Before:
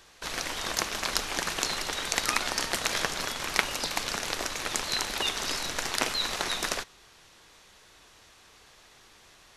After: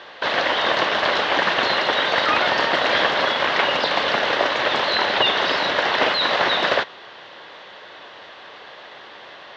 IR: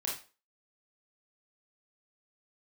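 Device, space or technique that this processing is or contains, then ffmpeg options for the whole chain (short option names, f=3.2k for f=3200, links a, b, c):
overdrive pedal into a guitar cabinet: -filter_complex "[0:a]asettb=1/sr,asplit=3[a][b][c];[a]atrim=end=4.924[d];[b]atrim=start=4.92:end=5.94,asetpts=PTS-STARTPTS,afade=t=in:d=0.004:c=qsin,afade=t=out:st=1.016:d=0.004:c=qsin,lowpass=9.6k[e];[c]atrim=start=5.936[f];[d][e]acrossfade=d=0.004:c1=hsin:c2=qsin[g];[g][f]acrossfade=d=0.004:c1=qsin:c2=hsin,asplit=2[h][i];[i]highpass=f=720:p=1,volume=29dB,asoftclip=type=tanh:threshold=-1dB[j];[h][j]amix=inputs=2:normalize=0,lowpass=f=4.7k:p=1,volume=-6dB,highpass=88,equalizer=f=570:t=q:w=4:g=6,equalizer=f=1.3k:t=q:w=4:g=-4,equalizer=f=2.4k:t=q:w=4:g=-8,lowpass=f=3.4k:w=0.5412,lowpass=f=3.4k:w=1.3066,volume=-2dB"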